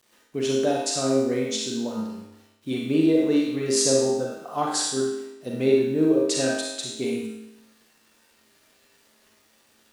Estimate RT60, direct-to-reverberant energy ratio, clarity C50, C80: 0.90 s, -3.0 dB, -0.5 dB, 3.0 dB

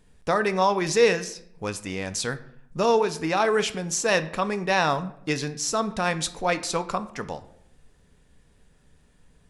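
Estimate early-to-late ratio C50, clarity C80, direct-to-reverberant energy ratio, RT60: 15.5 dB, 18.5 dB, 11.0 dB, 0.70 s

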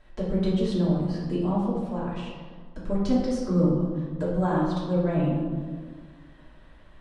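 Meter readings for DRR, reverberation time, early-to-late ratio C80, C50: -8.0 dB, 1.7 s, 3.0 dB, 0.0 dB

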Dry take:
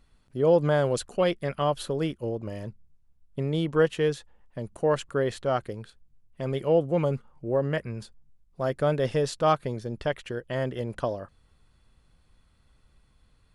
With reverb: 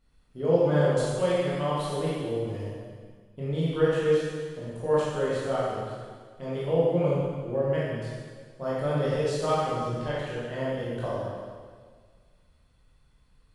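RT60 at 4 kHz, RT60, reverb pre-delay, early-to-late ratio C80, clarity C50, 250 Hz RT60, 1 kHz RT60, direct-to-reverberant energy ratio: 1.7 s, 1.7 s, 14 ms, -0.5 dB, -3.0 dB, 1.8 s, 1.6 s, -8.5 dB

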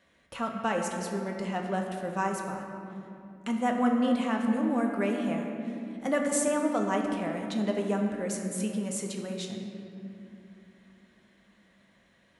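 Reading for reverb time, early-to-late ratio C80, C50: 2.8 s, 4.5 dB, 3.5 dB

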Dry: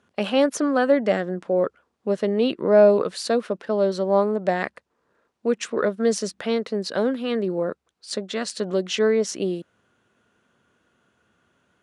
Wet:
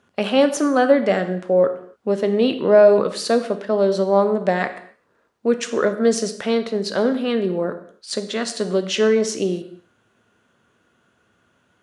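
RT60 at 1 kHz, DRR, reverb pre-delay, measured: n/a, 8.5 dB, 6 ms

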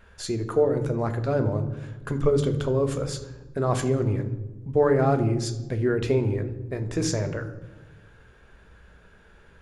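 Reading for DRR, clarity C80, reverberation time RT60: 7.0 dB, 14.0 dB, 1.2 s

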